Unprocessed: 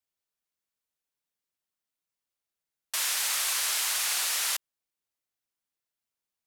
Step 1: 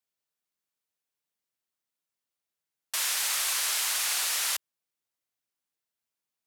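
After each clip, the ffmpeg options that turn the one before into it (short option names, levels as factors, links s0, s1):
-af "highpass=76"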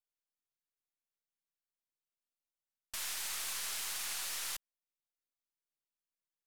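-af "aeval=exprs='if(lt(val(0),0),0.447*val(0),val(0))':c=same,volume=0.376"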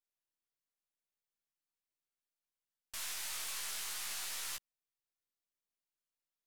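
-af "flanger=delay=15.5:depth=3.5:speed=0.43,volume=1.12"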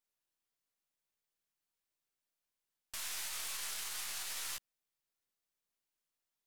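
-af "alimiter=level_in=2.82:limit=0.0631:level=0:latency=1,volume=0.355,volume=1.41"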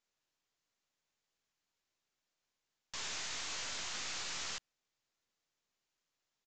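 -af "aeval=exprs='0.0119*(abs(mod(val(0)/0.0119+3,4)-2)-1)':c=same,aresample=16000,aresample=44100,volume=1.88"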